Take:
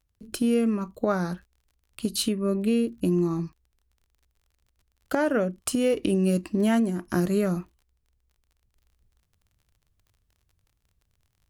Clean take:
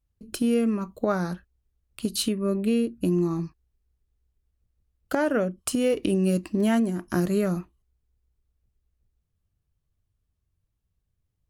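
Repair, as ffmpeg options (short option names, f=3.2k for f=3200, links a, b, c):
-af "adeclick=t=4,asetnsamples=n=441:p=0,asendcmd='8.76 volume volume -4.5dB',volume=0dB"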